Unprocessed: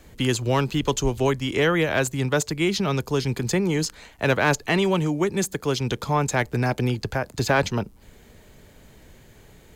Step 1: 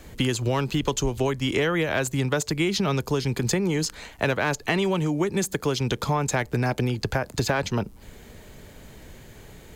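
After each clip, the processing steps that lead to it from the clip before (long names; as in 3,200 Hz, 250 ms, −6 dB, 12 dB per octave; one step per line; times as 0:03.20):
downward compressor, threshold −25 dBFS, peak gain reduction 10 dB
level +4.5 dB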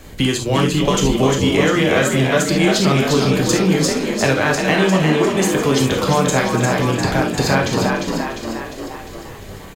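delay that plays each chunk backwards 230 ms, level −14 dB
echo with shifted repeats 351 ms, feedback 58%, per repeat +55 Hz, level −4.5 dB
reverb whose tail is shaped and stops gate 90 ms flat, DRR 1.5 dB
level +4.5 dB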